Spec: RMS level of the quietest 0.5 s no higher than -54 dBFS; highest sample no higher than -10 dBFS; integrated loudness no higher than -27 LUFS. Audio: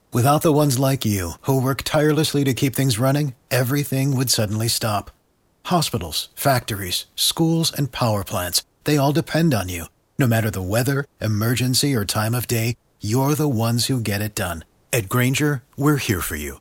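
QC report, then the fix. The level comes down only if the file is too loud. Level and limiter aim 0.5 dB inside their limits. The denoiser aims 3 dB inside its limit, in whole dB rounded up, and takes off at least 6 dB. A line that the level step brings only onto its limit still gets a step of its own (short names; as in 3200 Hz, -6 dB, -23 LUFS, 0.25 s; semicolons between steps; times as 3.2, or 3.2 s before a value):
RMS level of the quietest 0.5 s -63 dBFS: OK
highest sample -5.5 dBFS: fail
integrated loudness -20.5 LUFS: fail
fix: gain -7 dB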